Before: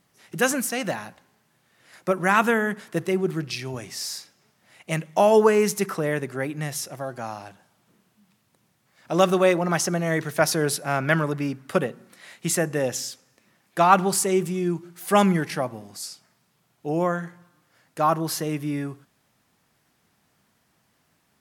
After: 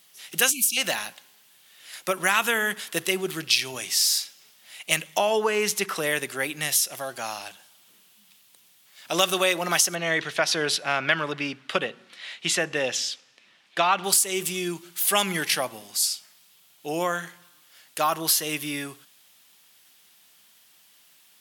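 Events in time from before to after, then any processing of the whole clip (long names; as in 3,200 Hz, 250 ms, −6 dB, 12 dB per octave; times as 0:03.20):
0:00.51–0:00.77: time-frequency box erased 350–2,200 Hz
0:05.18–0:05.96: low-pass filter 2,500 Hz 6 dB per octave
0:09.95–0:14.04: low-pass filter 3,800 Hz
whole clip: RIAA equalisation recording; downward compressor 4 to 1, threshold −20 dBFS; parametric band 3,200 Hz +10 dB 1 octave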